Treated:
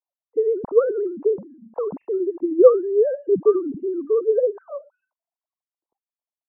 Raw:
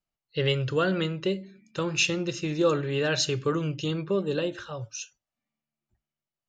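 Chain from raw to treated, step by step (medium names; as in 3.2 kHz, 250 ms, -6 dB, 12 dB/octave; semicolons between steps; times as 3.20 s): formants replaced by sine waves; elliptic low-pass 1 kHz, stop band 70 dB; trim +8 dB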